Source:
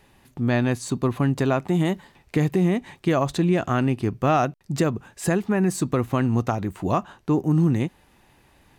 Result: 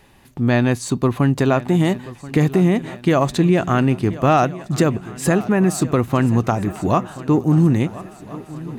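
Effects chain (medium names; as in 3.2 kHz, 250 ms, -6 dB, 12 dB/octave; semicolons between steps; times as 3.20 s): shuffle delay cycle 1374 ms, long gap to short 3:1, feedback 44%, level -17.5 dB; trim +5 dB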